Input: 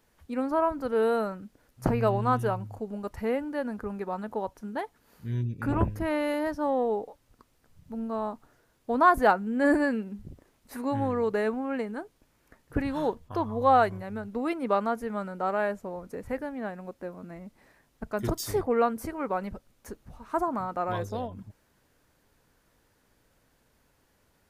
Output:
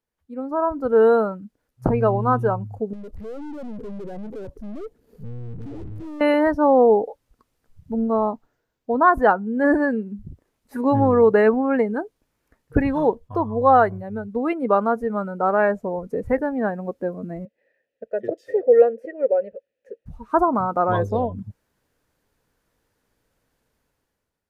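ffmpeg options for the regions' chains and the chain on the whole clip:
-filter_complex "[0:a]asettb=1/sr,asplit=3[s0][s1][s2];[s0]atrim=end=2.934[s3];[s1]atrim=start=2.93:end=6.21,asetpts=PTS-STARTPTS,afade=t=in:d=0.004:c=qsin,afade=t=out:st=3.276:d=0.004:c=qsin,lowshelf=f=650:t=q:w=1.5:g=11,acompressor=threshold=0.112:ratio=6:attack=3.2:release=140:knee=1:detection=peak,aeval=exprs='(tanh(158*val(0)+0.6)-tanh(0.6))/158':c=same[s4];[s2]atrim=start=6.206[s5];[s3][s4]acrossfade=d=0.004:c1=hsin:c2=qsin[s6];[s6][s5]acrossfade=d=0.004:c1=qsin:c2=hsin,asettb=1/sr,asplit=3[s7][s8][s9];[s7]atrim=end=7.924[s10];[s8]atrim=start=7.92:end=9.13,asetpts=PTS-STARTPTS,afade=t=in:d=0.004:c=qsin,afade=t=out:st=1.206:d=0.004:c=qsin,equalizer=f=10000:t=o:w=0.38:g=-12,bandreject=f=1200:w=19[s11];[s9]atrim=start=9.126[s12];[s10][s11]acrossfade=d=0.004:c1=hsin:c2=qsin[s13];[s13][s12]acrossfade=d=0.004:c1=qsin:c2=hsin,asettb=1/sr,asplit=3[s14][s15][s16];[s14]atrim=end=17.454[s17];[s15]atrim=start=17.45:end=20.06,asetpts=PTS-STARTPTS,afade=t=in:d=0.004:c=qsin,afade=t=out:st=2.606:d=0.004:c=qsin,acontrast=47,asplit=3[s18][s19][s20];[s18]bandpass=f=530:t=q:w=8,volume=1[s21];[s19]bandpass=f=1840:t=q:w=8,volume=0.501[s22];[s20]bandpass=f=2480:t=q:w=8,volume=0.355[s23];[s21][s22][s23]amix=inputs=3:normalize=0[s24];[s16]atrim=start=20.056[s25];[s17][s24]acrossfade=d=0.004:c1=hsin:c2=qsin[s26];[s26][s25]acrossfade=d=0.004:c1=qsin:c2=hsin,dynaudnorm=f=160:g=9:m=5.31,equalizer=f=460:t=o:w=0.26:g=3,afftdn=nr=16:nf=-25,volume=0.708"

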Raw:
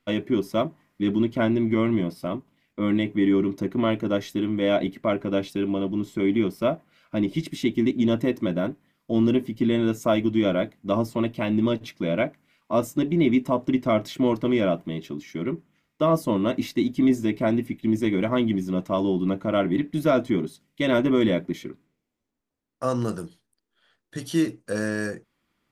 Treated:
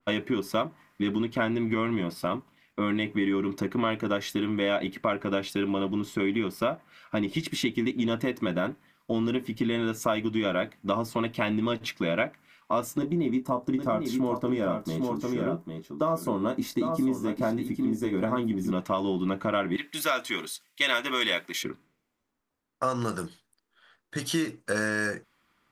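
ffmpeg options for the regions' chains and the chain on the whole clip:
-filter_complex "[0:a]asettb=1/sr,asplit=3[s0][s1][s2];[s0]atrim=end=12.984[s3];[s1]atrim=start=12.98:end=18.72,asetpts=PTS-STARTPTS,afade=t=in:d=0.004:c=qsin,afade=t=out:st=5.736:d=0.004:c=qsin,equalizer=f=2600:t=o:w=1.4:g=-14,asplit=2[s4][s5];[s5]adelay=23,volume=0.316[s6];[s4][s6]amix=inputs=2:normalize=0,atrim=end_sample=253134,aecho=1:1:801:0.422,atrim=end_sample=253134[s7];[s2]atrim=start=18.716[s8];[s3][s7]acrossfade=d=0.004:c1=hsin:c2=qsin[s9];[s9][s8]acrossfade=d=0.004:c1=qsin:c2=hsin,asettb=1/sr,asplit=3[s10][s11][s12];[s10]atrim=end=19.764[s13];[s11]atrim=start=19.76:end=21.63,asetpts=PTS-STARTPTS,afade=t=in:d=0.004:c=qsin,afade=t=out:st=1.866:d=0.004:c=qsin,highpass=f=1400:p=1,highshelf=f=2800:g=8[s14];[s12]atrim=start=21.626[s15];[s13][s14]acrossfade=d=0.004:c1=hsin:c2=qsin[s16];[s16][s15]acrossfade=d=0.004:c1=qsin:c2=hsin,equalizer=f=1200:w=0.93:g=8,acompressor=threshold=0.0562:ratio=4,adynamicequalizer=threshold=0.00794:dfrequency=1600:dqfactor=0.7:tfrequency=1600:tqfactor=0.7:attack=5:release=100:ratio=0.375:range=3:mode=boostabove:tftype=highshelf"

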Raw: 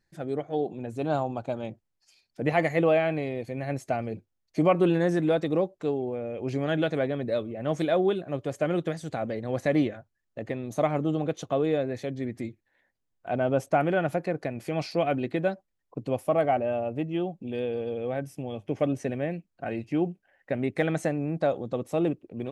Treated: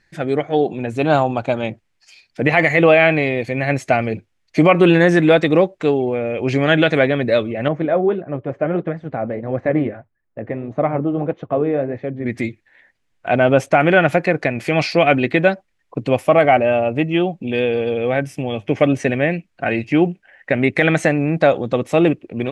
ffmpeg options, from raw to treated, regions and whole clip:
-filter_complex "[0:a]asettb=1/sr,asplit=3[s0][s1][s2];[s0]atrim=end=7.684[s3];[s1]atrim=start=7.68:end=12.26,asetpts=PTS-STARTPTS,afade=t=in:d=0.004:c=qsin,afade=t=out:st=4.576:d=0.004:c=qsin,lowpass=1100,flanger=delay=0.5:depth=9:regen=-65:speed=1.6:shape=sinusoidal[s4];[s2]atrim=start=12.256[s5];[s3][s4]acrossfade=d=0.004:c1=hsin:c2=qsin[s6];[s6][s5]acrossfade=d=0.004:c1=qsin:c2=hsin,lowpass=9500,equalizer=f=2200:t=o:w=1.3:g=9.5,alimiter=level_in=3.98:limit=0.891:release=50:level=0:latency=1,volume=0.891"

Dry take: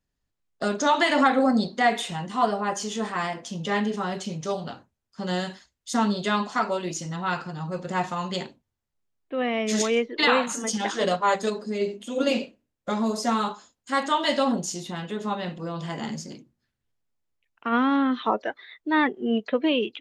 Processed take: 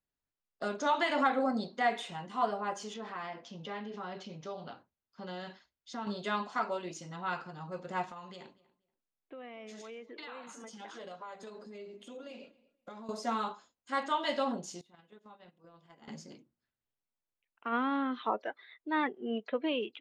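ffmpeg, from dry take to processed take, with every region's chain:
-filter_complex "[0:a]asettb=1/sr,asplit=3[s0][s1][s2];[s0]atrim=end=2.944[s3];[s1]atrim=start=2.94:end=6.07,asetpts=PTS-STARTPTS,afade=t=in:d=0.004:c=qsin,afade=t=out:st=3.126:d=0.004:c=qsin,lowpass=f=5800:w=0.5412,lowpass=f=5800:w=1.3066,acompressor=threshold=0.0355:ratio=2.5:attack=3.2:release=140:knee=1:detection=peak[s4];[s2]atrim=start=6.066[s5];[s3][s4]acrossfade=d=0.004:c1=hsin:c2=qsin[s6];[s6][s5]acrossfade=d=0.004:c1=qsin:c2=hsin,asettb=1/sr,asplit=3[s7][s8][s9];[s7]atrim=end=8.044[s10];[s8]atrim=start=8.04:end=13.09,asetpts=PTS-STARTPTS,afade=t=in:d=0.004:c=qsin,afade=t=out:st=5.046:d=0.004:c=qsin,acompressor=threshold=0.0224:ratio=12:attack=3.2:release=140:knee=1:detection=peak,asplit=2[s11][s12];[s12]adelay=239,lowpass=f=3600:p=1,volume=0.0891,asplit=2[s13][s14];[s14]adelay=239,lowpass=f=3600:p=1,volume=0.19[s15];[s11][s13][s15]amix=inputs=3:normalize=0,atrim=end_sample=222705[s16];[s9]atrim=start=13.086[s17];[s10][s16]acrossfade=d=0.004:c1=hsin:c2=qsin[s18];[s18][s17]acrossfade=d=0.004:c1=qsin:c2=hsin,asettb=1/sr,asplit=3[s19][s20][s21];[s19]atrim=end=14.814[s22];[s20]atrim=start=14.81:end=16.08,asetpts=PTS-STARTPTS,afade=t=in:d=0.004:c=qsin,afade=t=out:st=1.266:d=0.004:c=qsin,agate=range=0.1:threshold=0.0316:ratio=16:release=100:detection=peak,acompressor=threshold=0.00794:ratio=6:attack=3.2:release=140:knee=1:detection=peak[s23];[s21]atrim=start=16.076[s24];[s22][s23]acrossfade=d=0.004:c1=hsin:c2=qsin[s25];[s25][s24]acrossfade=d=0.004:c1=qsin:c2=hsin,lowpass=f=2800:p=1,lowshelf=f=250:g=-10,bandreject=f=1800:w=21,volume=0.473"

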